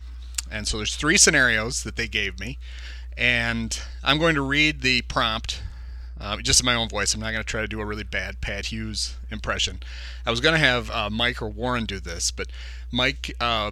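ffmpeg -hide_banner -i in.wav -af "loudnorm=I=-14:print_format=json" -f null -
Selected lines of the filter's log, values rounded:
"input_i" : "-23.0",
"input_tp" : "-1.6",
"input_lra" : "4.0",
"input_thresh" : "-33.5",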